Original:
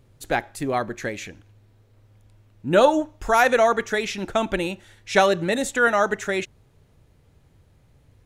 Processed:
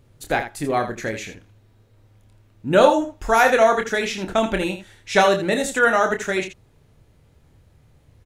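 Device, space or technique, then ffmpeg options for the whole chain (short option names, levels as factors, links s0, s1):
slapback doubling: -filter_complex "[0:a]asplit=3[s0][s1][s2];[s1]adelay=27,volume=0.447[s3];[s2]adelay=81,volume=0.316[s4];[s0][s3][s4]amix=inputs=3:normalize=0,volume=1.12"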